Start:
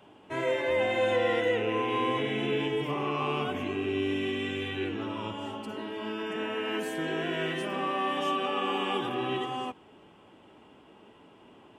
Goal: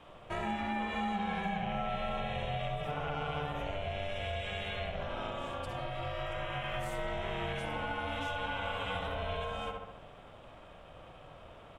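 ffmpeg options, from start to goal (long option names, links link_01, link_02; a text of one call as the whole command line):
ffmpeg -i in.wav -filter_complex "[0:a]asplit=2[link_01][link_02];[link_02]adelay=68,lowpass=frequency=2600:poles=1,volume=-3.5dB,asplit=2[link_03][link_04];[link_04]adelay=68,lowpass=frequency=2600:poles=1,volume=0.5,asplit=2[link_05][link_06];[link_06]adelay=68,lowpass=frequency=2600:poles=1,volume=0.5,asplit=2[link_07][link_08];[link_08]adelay=68,lowpass=frequency=2600:poles=1,volume=0.5,asplit=2[link_09][link_10];[link_10]adelay=68,lowpass=frequency=2600:poles=1,volume=0.5,asplit=2[link_11][link_12];[link_12]adelay=68,lowpass=frequency=2600:poles=1,volume=0.5,asplit=2[link_13][link_14];[link_14]adelay=68,lowpass=frequency=2600:poles=1,volume=0.5[link_15];[link_01][link_03][link_05][link_07][link_09][link_11][link_13][link_15]amix=inputs=8:normalize=0,aeval=exprs='val(0)*sin(2*PI*300*n/s)':channel_layout=same,acompressor=threshold=-39dB:ratio=3,volume=4dB" out.wav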